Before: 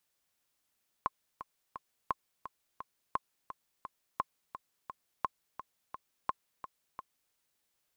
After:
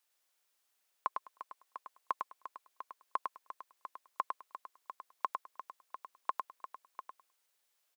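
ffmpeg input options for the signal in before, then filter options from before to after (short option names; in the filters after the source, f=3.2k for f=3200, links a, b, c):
-f lavfi -i "aevalsrc='pow(10,(-16.5-12*gte(mod(t,3*60/172),60/172))/20)*sin(2*PI*1060*mod(t,60/172))*exp(-6.91*mod(t,60/172)/0.03)':d=6.27:s=44100"
-af "highpass=460,aecho=1:1:103|206|309:0.596|0.0893|0.0134"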